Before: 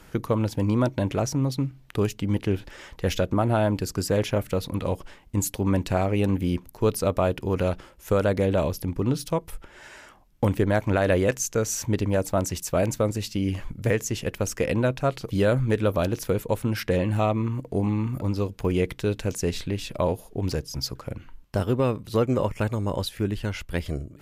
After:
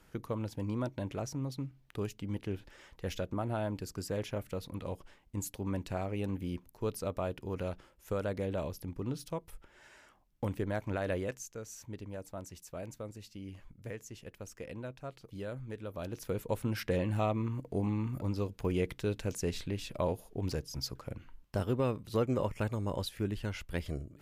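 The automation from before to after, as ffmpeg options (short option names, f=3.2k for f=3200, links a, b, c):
-af "volume=-1dB,afade=t=out:st=11.12:d=0.41:silence=0.446684,afade=t=in:st=15.9:d=0.68:silence=0.266073"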